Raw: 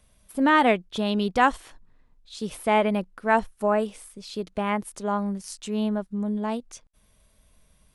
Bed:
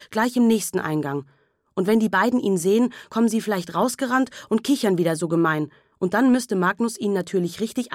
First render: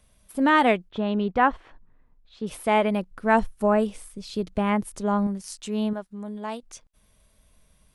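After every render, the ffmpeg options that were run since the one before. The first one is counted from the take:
ffmpeg -i in.wav -filter_complex "[0:a]asettb=1/sr,asplit=3[link_01][link_02][link_03];[link_01]atrim=end=0.894[link_04];[link_02]atrim=start=0.89:end=2.47,asetpts=PTS-STARTPTS,afade=type=in:duration=0.004:curve=qsin,afade=type=out:start_time=1.576:duration=0.004:curve=qsin,lowpass=2100[link_05];[link_03]atrim=start=2.466[link_06];[link_04][link_05]acrossfade=duration=0.004:curve1=hsin:curve2=qsin[link_07];[link_07][link_06]acrossfade=duration=0.004:curve1=qsin:curve2=hsin,asettb=1/sr,asplit=3[link_08][link_09][link_10];[link_08]atrim=end=3.114[link_11];[link_09]atrim=start=3.11:end=5.27,asetpts=PTS-STARTPTS,afade=type=in:duration=0.004:curve=qsin,afade=type=out:start_time=2.156:duration=0.004:curve=qsin,lowshelf=frequency=220:gain=9.5[link_12];[link_10]atrim=start=5.266[link_13];[link_11][link_12]acrossfade=duration=0.004:curve1=hsin:curve2=qsin[link_14];[link_14][link_13]acrossfade=duration=0.004:curve1=qsin:curve2=hsin,asettb=1/sr,asplit=3[link_15][link_16][link_17];[link_15]atrim=end=5.934[link_18];[link_16]atrim=start=5.93:end=6.63,asetpts=PTS-STARTPTS,afade=type=in:duration=0.004:curve=qsin,afade=type=out:start_time=0.696:duration=0.004:curve=qsin,lowshelf=frequency=390:gain=-10.5[link_19];[link_17]atrim=start=6.626[link_20];[link_18][link_19]acrossfade=duration=0.004:curve1=hsin:curve2=qsin[link_21];[link_21][link_20]acrossfade=duration=0.004:curve1=qsin:curve2=hsin" out.wav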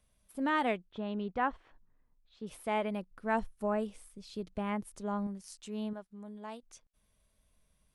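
ffmpeg -i in.wav -af "volume=-11.5dB" out.wav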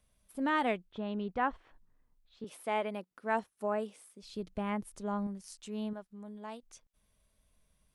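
ffmpeg -i in.wav -filter_complex "[0:a]asettb=1/sr,asplit=3[link_01][link_02][link_03];[link_01]atrim=end=2.444[link_04];[link_02]atrim=start=2.44:end=4.23,asetpts=PTS-STARTPTS,afade=type=in:duration=0.004:curve=qsin,afade=type=out:start_time=1.786:duration=0.004:curve=qsin,highpass=260[link_05];[link_03]atrim=start=4.226[link_06];[link_04][link_05]acrossfade=duration=0.004:curve1=hsin:curve2=qsin[link_07];[link_07][link_06]acrossfade=duration=0.004:curve1=qsin:curve2=hsin" out.wav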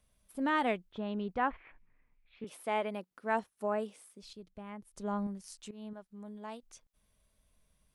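ffmpeg -i in.wav -filter_complex "[0:a]asettb=1/sr,asplit=3[link_01][link_02][link_03];[link_01]atrim=end=1.504[link_04];[link_02]atrim=start=1.5:end=2.47,asetpts=PTS-STARTPTS,afade=type=in:duration=0.004:curve=qsin,afade=type=out:start_time=0.966:duration=0.004:curve=qsin,lowpass=frequency=2300:width_type=q:width=7.5[link_05];[link_03]atrim=start=2.466[link_06];[link_04][link_05]acrossfade=duration=0.004:curve1=hsin:curve2=qsin[link_07];[link_07][link_06]acrossfade=duration=0.004:curve1=qsin:curve2=hsin,asplit=4[link_08][link_09][link_10][link_11];[link_08]atrim=end=4.332[link_12];[link_09]atrim=start=4.328:end=4.972,asetpts=PTS-STARTPTS,volume=-11dB[link_13];[link_10]atrim=start=4.968:end=5.71,asetpts=PTS-STARTPTS,afade=type=out:start_time=0.738:duration=0.004:curve=hsin:silence=0.158489[link_14];[link_11]atrim=start=5.71,asetpts=PTS-STARTPTS,afade=type=in:duration=0.48:silence=0.158489[link_15];[link_12][link_13]acrossfade=duration=0.004:curve1=hsin:curve2=hsin[link_16];[link_14][link_15]concat=n=2:v=0:a=1[link_17];[link_16][link_17]acrossfade=duration=0.004:curve1=hsin:curve2=hsin" out.wav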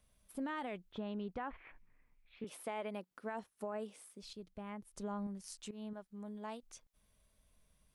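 ffmpeg -i in.wav -af "alimiter=level_in=3dB:limit=-24dB:level=0:latency=1,volume=-3dB,acompressor=threshold=-40dB:ratio=2.5" out.wav

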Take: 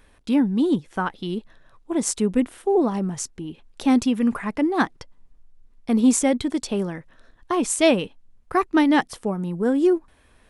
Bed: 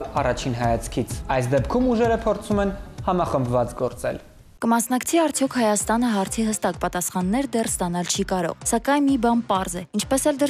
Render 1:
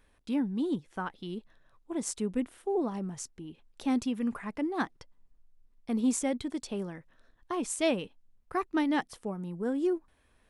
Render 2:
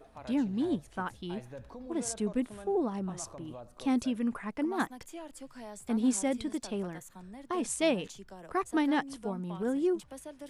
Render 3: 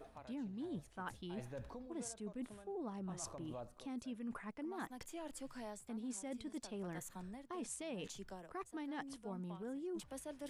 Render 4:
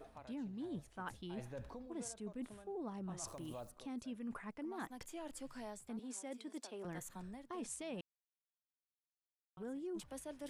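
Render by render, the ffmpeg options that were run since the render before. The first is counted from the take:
ffmpeg -i in.wav -af "volume=-10.5dB" out.wav
ffmpeg -i in.wav -i bed.wav -filter_complex "[1:a]volume=-25.5dB[link_01];[0:a][link_01]amix=inputs=2:normalize=0" out.wav
ffmpeg -i in.wav -af "alimiter=level_in=0.5dB:limit=-24dB:level=0:latency=1:release=426,volume=-0.5dB,areverse,acompressor=threshold=-43dB:ratio=6,areverse" out.wav
ffmpeg -i in.wav -filter_complex "[0:a]asplit=3[link_01][link_02][link_03];[link_01]afade=type=out:start_time=3.27:duration=0.02[link_04];[link_02]aemphasis=mode=production:type=75fm,afade=type=in:start_time=3.27:duration=0.02,afade=type=out:start_time=3.7:duration=0.02[link_05];[link_03]afade=type=in:start_time=3.7:duration=0.02[link_06];[link_04][link_05][link_06]amix=inputs=3:normalize=0,asettb=1/sr,asplit=3[link_07][link_08][link_09];[link_07]atrim=end=5.994[link_10];[link_08]atrim=start=5.99:end=6.85,asetpts=PTS-STARTPTS,afade=type=in:duration=0.004:curve=qsin,afade=type=out:start_time=0.856:duration=0.004:curve=qsin,highpass=frequency=270:width=0.5412,highpass=frequency=270:width=1.3066[link_11];[link_09]atrim=start=6.846[link_12];[link_10][link_11]acrossfade=duration=0.004:curve1=hsin:curve2=qsin[link_13];[link_13][link_12]acrossfade=duration=0.004:curve1=qsin:curve2=hsin,asplit=3[link_14][link_15][link_16];[link_14]atrim=end=8.01,asetpts=PTS-STARTPTS,afade=type=out:start_time=8.006:duration=0.004:curve=hsin[link_17];[link_15]atrim=start=8.01:end=9.57,asetpts=PTS-STARTPTS,volume=0[link_18];[link_16]atrim=start=9.57,asetpts=PTS-STARTPTS,afade=type=in:duration=0.004:curve=hsin[link_19];[link_17][link_18][link_19]concat=n=3:v=0:a=1" out.wav

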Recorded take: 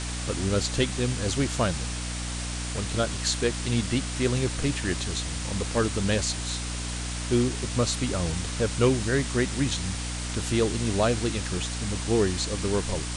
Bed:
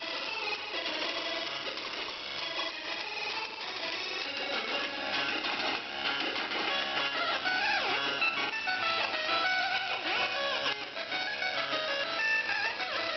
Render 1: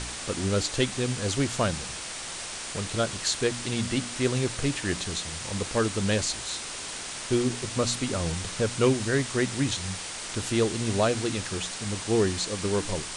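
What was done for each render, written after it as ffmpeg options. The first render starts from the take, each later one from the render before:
ffmpeg -i in.wav -af "bandreject=frequency=60:width_type=h:width=4,bandreject=frequency=120:width_type=h:width=4,bandreject=frequency=180:width_type=h:width=4,bandreject=frequency=240:width_type=h:width=4,bandreject=frequency=300:width_type=h:width=4" out.wav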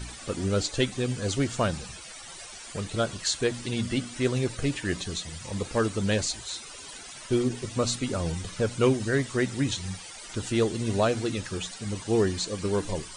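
ffmpeg -i in.wav -af "afftdn=noise_reduction=15:noise_floor=-37" out.wav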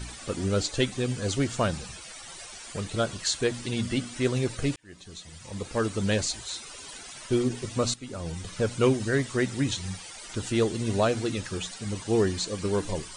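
ffmpeg -i in.wav -filter_complex "[0:a]asplit=3[link_01][link_02][link_03];[link_01]atrim=end=4.76,asetpts=PTS-STARTPTS,afade=type=out:start_time=4.756:duration=0.004:curve=hsin[link_04];[link_02]atrim=start=4.76:end=7.94,asetpts=PTS-STARTPTS,afade=type=in:duration=1.27,afade=type=out:start_time=3.176:duration=0.004:curve=hsin:silence=0.177828[link_05];[link_03]atrim=start=7.94,asetpts=PTS-STARTPTS,afade=type=in:duration=0.69:silence=0.177828[link_06];[link_04][link_05][link_06]concat=n=3:v=0:a=1" out.wav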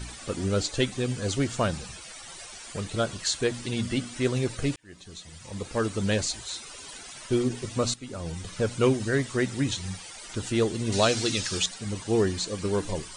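ffmpeg -i in.wav -filter_complex "[0:a]asettb=1/sr,asplit=3[link_01][link_02][link_03];[link_01]atrim=end=10.924[link_04];[link_02]atrim=start=10.92:end=11.66,asetpts=PTS-STARTPTS,afade=type=in:duration=0.004:curve=qsin,afade=type=out:start_time=0.736:duration=0.004:curve=qsin,equalizer=frequency=5100:width=0.58:gain=12.5[link_05];[link_03]atrim=start=11.656[link_06];[link_04][link_05]acrossfade=duration=0.004:curve1=hsin:curve2=qsin[link_07];[link_07][link_06]acrossfade=duration=0.004:curve1=qsin:curve2=hsin" out.wav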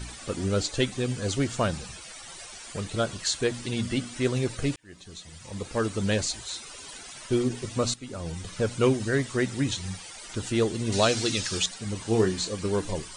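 ffmpeg -i in.wav -filter_complex "[0:a]asettb=1/sr,asplit=3[link_01][link_02][link_03];[link_01]atrim=end=11.984[link_04];[link_02]atrim=start=11.98:end=12.53,asetpts=PTS-STARTPTS,afade=type=in:duration=0.004:curve=qsin,afade=type=out:start_time=0.546:duration=0.004:curve=qsin,asplit=2[link_05][link_06];[link_06]adelay=27,volume=-7dB[link_07];[link_05][link_07]amix=inputs=2:normalize=0,atrim=end_sample=24255[link_08];[link_03]atrim=start=12.526[link_09];[link_04][link_08]acrossfade=duration=0.004:curve1=hsin:curve2=qsin[link_10];[link_10][link_09]acrossfade=duration=0.004:curve1=qsin:curve2=hsin" out.wav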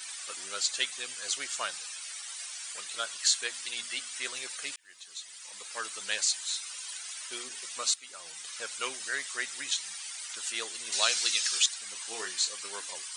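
ffmpeg -i in.wav -af "highpass=1400,highshelf=frequency=6400:gain=6.5" out.wav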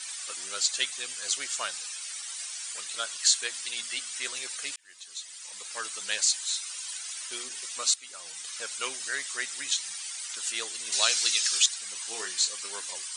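ffmpeg -i in.wav -af "lowpass=10000,highshelf=frequency=5500:gain=7" out.wav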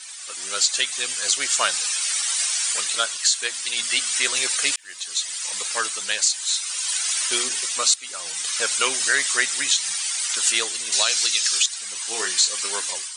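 ffmpeg -i in.wav -af "dynaudnorm=framelen=170:gausssize=5:maxgain=14.5dB,alimiter=limit=-6.5dB:level=0:latency=1:release=150" out.wav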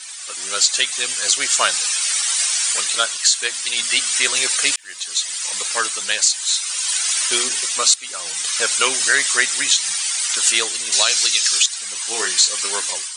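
ffmpeg -i in.wav -af "volume=4dB" out.wav

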